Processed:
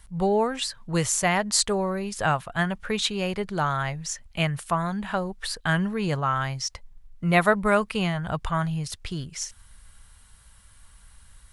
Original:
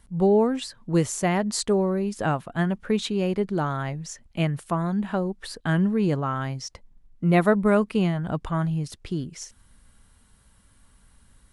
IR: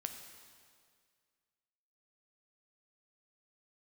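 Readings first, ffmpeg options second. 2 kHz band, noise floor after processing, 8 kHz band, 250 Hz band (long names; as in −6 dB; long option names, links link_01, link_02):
+5.5 dB, −53 dBFS, +6.5 dB, −4.5 dB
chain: -af "equalizer=frequency=280:width_type=o:width=1.9:gain=-15,volume=6.5dB"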